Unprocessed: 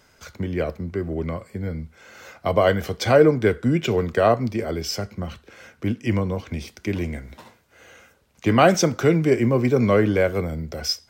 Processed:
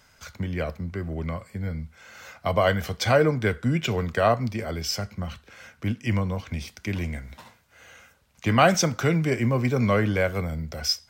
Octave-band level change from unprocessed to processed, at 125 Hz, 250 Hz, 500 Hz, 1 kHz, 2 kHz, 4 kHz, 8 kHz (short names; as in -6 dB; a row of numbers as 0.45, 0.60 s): -1.0, -4.5, -5.5, -1.5, -0.5, 0.0, 0.0 dB